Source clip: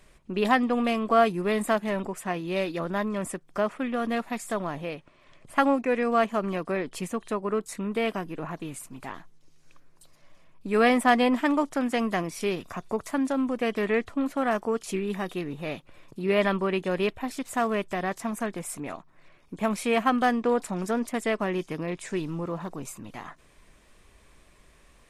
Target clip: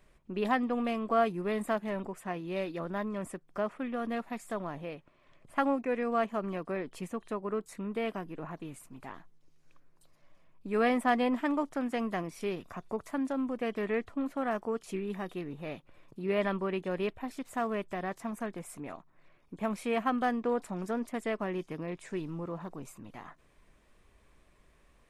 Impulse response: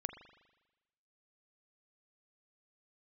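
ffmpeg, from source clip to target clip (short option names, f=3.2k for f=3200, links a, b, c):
-af "equalizer=f=7.4k:w=0.36:g=-6,volume=-6dB"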